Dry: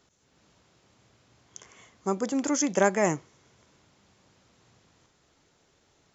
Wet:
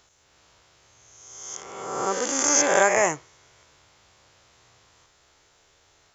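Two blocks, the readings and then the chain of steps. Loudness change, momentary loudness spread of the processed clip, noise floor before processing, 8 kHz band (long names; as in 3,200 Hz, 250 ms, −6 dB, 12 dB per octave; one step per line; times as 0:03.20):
+4.5 dB, 18 LU, −67 dBFS, can't be measured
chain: peak hold with a rise ahead of every peak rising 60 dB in 1.37 s
parametric band 210 Hz −15 dB 1.6 octaves
level +4.5 dB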